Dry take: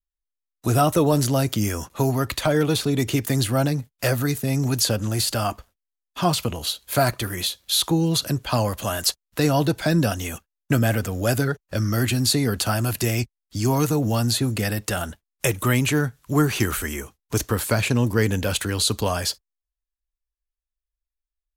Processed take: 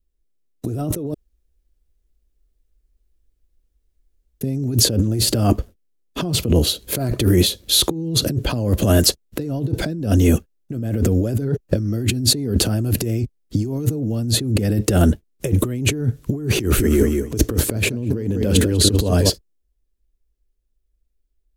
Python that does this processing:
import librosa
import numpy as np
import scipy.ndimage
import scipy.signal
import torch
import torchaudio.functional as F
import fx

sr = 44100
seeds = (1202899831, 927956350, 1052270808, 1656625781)

y = fx.echo_feedback(x, sr, ms=197, feedback_pct=18, wet_db=-9.5, at=(16.51, 19.3))
y = fx.edit(y, sr, fx.room_tone_fill(start_s=1.14, length_s=3.27), tone=tone)
y = fx.low_shelf_res(y, sr, hz=610.0, db=14.0, q=1.5)
y = fx.over_compress(y, sr, threshold_db=-17.0, ratio=-1.0)
y = y * 10.0 ** (-2.5 / 20.0)